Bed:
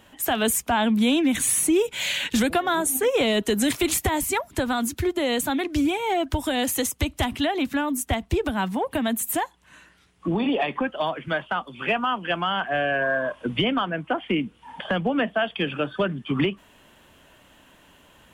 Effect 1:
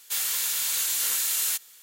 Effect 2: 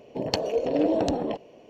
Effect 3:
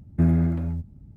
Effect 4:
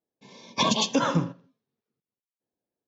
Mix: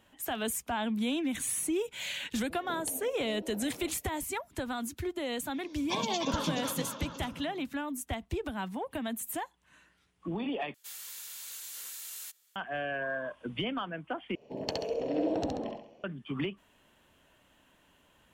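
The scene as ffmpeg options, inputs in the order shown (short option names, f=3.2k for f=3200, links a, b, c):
-filter_complex "[2:a]asplit=2[a][b];[0:a]volume=-11dB[c];[a]acompressor=threshold=-39dB:ratio=6:attack=58:release=852:knee=1:detection=rms[d];[4:a]aecho=1:1:300|540|732|885.6|1008|1107:0.631|0.398|0.251|0.158|0.1|0.0631[e];[b]aecho=1:1:67|134|201|268|335:0.708|0.283|0.113|0.0453|0.0181[f];[c]asplit=3[g][h][i];[g]atrim=end=10.744[j];[1:a]atrim=end=1.82,asetpts=PTS-STARTPTS,volume=-17dB[k];[h]atrim=start=12.556:end=14.354[l];[f]atrim=end=1.69,asetpts=PTS-STARTPTS,volume=-9.5dB[m];[i]atrim=start=16.036[n];[d]atrim=end=1.69,asetpts=PTS-STARTPTS,volume=-6dB,afade=t=in:d=0.004:c=hsin,afade=t=out:st=1.686:d=0.004:c=hsin,adelay=2540[o];[e]atrim=end=2.87,asetpts=PTS-STARTPTS,volume=-10.5dB,afade=t=in:d=0.004:c=hsin,afade=t=out:st=2.866:d=0.004:c=hsin,adelay=5320[p];[j][k]acrossfade=d=0.004:c1=hsin:c2=hsin[q];[q][l]acrossfade=d=0.004:c1=hsin:c2=hsin[r];[r][m]acrossfade=d=0.004:c1=hsin:c2=hsin[s];[s][n]acrossfade=d=0.004:c1=hsin:c2=hsin[t];[t][o][p]amix=inputs=3:normalize=0"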